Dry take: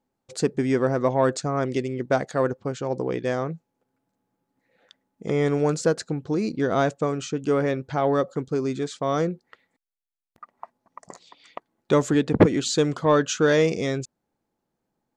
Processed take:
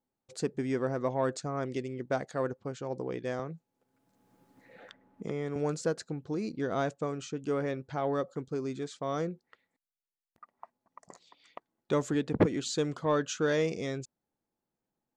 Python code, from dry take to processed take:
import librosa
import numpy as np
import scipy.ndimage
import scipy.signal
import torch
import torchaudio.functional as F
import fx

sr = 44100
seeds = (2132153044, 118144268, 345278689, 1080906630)

y = fx.band_squash(x, sr, depth_pct=70, at=(3.39, 5.56))
y = y * 10.0 ** (-9.0 / 20.0)